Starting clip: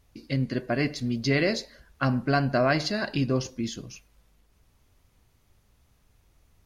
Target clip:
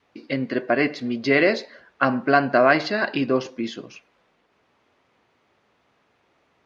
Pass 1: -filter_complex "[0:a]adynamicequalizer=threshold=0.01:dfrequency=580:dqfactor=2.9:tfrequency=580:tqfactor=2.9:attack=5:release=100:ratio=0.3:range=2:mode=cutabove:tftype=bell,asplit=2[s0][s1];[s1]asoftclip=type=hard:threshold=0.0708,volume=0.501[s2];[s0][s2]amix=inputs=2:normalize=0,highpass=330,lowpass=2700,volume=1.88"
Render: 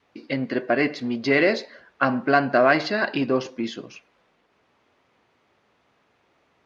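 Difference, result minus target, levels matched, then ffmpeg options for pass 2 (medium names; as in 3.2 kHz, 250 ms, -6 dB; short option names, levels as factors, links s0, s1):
hard clipper: distortion +16 dB
-filter_complex "[0:a]adynamicequalizer=threshold=0.01:dfrequency=580:dqfactor=2.9:tfrequency=580:tqfactor=2.9:attack=5:release=100:ratio=0.3:range=2:mode=cutabove:tftype=bell,asplit=2[s0][s1];[s1]asoftclip=type=hard:threshold=0.188,volume=0.501[s2];[s0][s2]amix=inputs=2:normalize=0,highpass=330,lowpass=2700,volume=1.88"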